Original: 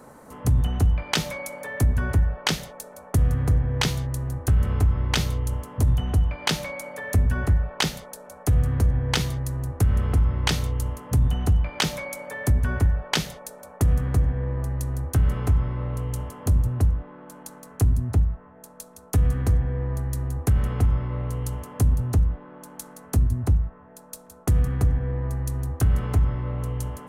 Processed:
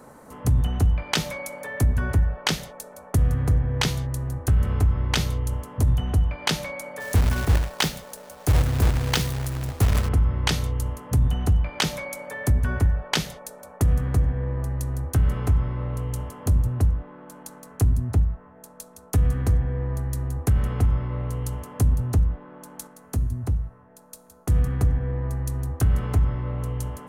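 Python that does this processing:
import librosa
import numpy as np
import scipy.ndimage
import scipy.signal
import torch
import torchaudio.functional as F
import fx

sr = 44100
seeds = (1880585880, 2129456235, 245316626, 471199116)

y = fx.quant_companded(x, sr, bits=4, at=(6.99, 10.07), fade=0.02)
y = fx.comb_fb(y, sr, f0_hz=120.0, decay_s=0.79, harmonics='all', damping=0.0, mix_pct=40, at=(22.87, 24.5))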